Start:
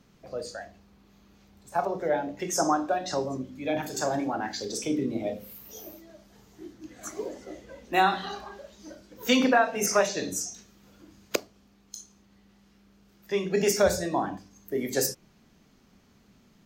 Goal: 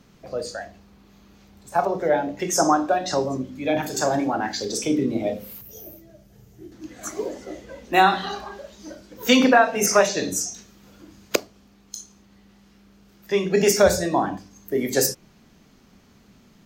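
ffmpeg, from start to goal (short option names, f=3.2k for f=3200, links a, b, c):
-filter_complex "[0:a]asettb=1/sr,asplit=3[a][b][c];[a]atrim=end=5.614[d];[b]atrim=start=5.61:end=6.72,asetpts=PTS-STARTPTS,afade=t=in:d=0.004:c=qsin,afade=t=out:st=1.106:d=0.004:c=qsin,equalizer=f=125:t=o:w=1:g=8,equalizer=f=250:t=o:w=1:g=-8,equalizer=f=1k:t=o:w=1:g=-12,equalizer=f=2k:t=o:w=1:g=-5,equalizer=f=4k:t=o:w=1:g=-9,equalizer=f=8k:t=o:w=1:g=-5[e];[c]atrim=start=6.716[f];[d][e]acrossfade=d=0.004:c1=hsin:c2=qsin[g];[g][f]acrossfade=d=0.004:c1=qsin:c2=hsin,volume=6dB"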